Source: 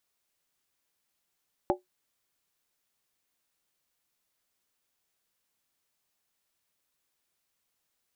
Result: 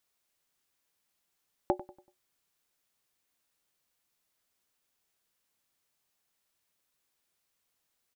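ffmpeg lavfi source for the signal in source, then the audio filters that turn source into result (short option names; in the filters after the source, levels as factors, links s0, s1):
-f lavfi -i "aevalsrc='0.0891*pow(10,-3*t/0.15)*sin(2*PI*364*t)+0.075*pow(10,-3*t/0.119)*sin(2*PI*580.2*t)+0.0631*pow(10,-3*t/0.103)*sin(2*PI*777.5*t)+0.0531*pow(10,-3*t/0.099)*sin(2*PI*835.7*t)':d=0.63:s=44100"
-filter_complex "[0:a]asplit=2[s0][s1];[s1]adelay=95,lowpass=f=2000:p=1,volume=0.168,asplit=2[s2][s3];[s3]adelay=95,lowpass=f=2000:p=1,volume=0.41,asplit=2[s4][s5];[s5]adelay=95,lowpass=f=2000:p=1,volume=0.41,asplit=2[s6][s7];[s7]adelay=95,lowpass=f=2000:p=1,volume=0.41[s8];[s0][s2][s4][s6][s8]amix=inputs=5:normalize=0"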